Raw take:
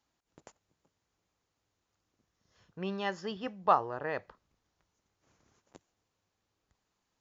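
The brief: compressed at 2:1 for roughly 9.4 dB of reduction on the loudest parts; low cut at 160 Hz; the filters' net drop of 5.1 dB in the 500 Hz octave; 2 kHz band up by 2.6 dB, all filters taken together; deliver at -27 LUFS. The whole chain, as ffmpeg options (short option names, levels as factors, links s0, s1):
-af "highpass=160,equalizer=f=500:t=o:g=-7,equalizer=f=2000:t=o:g=3.5,acompressor=threshold=0.0141:ratio=2,volume=4.73"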